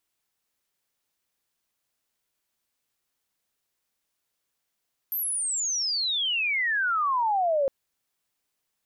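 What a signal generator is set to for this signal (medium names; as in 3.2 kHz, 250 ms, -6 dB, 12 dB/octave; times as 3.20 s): sweep logarithmic 13 kHz -> 530 Hz -26 dBFS -> -20.5 dBFS 2.56 s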